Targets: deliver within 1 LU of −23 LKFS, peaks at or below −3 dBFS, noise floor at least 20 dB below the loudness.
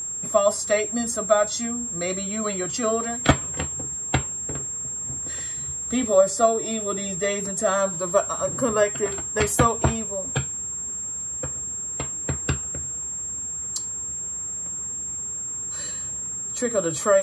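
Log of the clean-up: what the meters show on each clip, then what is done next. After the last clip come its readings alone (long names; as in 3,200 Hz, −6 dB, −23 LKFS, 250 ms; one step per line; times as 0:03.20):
interfering tone 7,500 Hz; level of the tone −28 dBFS; integrated loudness −24.5 LKFS; sample peak −3.0 dBFS; target loudness −23.0 LKFS
→ notch filter 7,500 Hz, Q 30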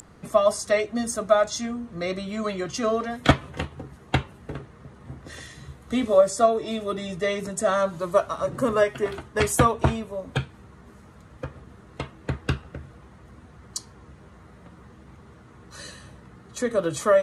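interfering tone none found; integrated loudness −25.0 LKFS; sample peak −3.5 dBFS; target loudness −23.0 LKFS
→ level +2 dB
brickwall limiter −3 dBFS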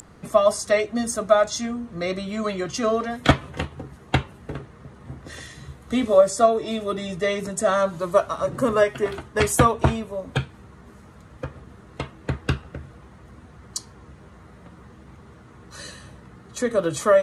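integrated loudness −23.0 LKFS; sample peak −3.0 dBFS; background noise floor −48 dBFS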